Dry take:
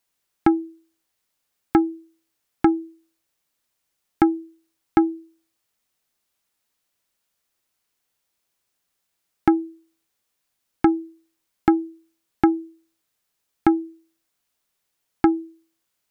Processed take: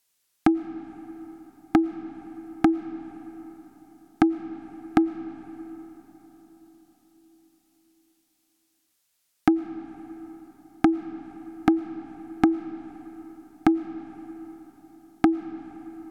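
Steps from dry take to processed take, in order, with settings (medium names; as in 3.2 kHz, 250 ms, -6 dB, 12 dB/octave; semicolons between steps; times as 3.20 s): dynamic bell 200 Hz, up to +5 dB, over -35 dBFS, Q 2.4; low-pass that closes with the level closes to 390 Hz, closed at -16 dBFS; treble shelf 2.5 kHz +9 dB; reverberation RT60 4.6 s, pre-delay 70 ms, DRR 13.5 dB; trim -2 dB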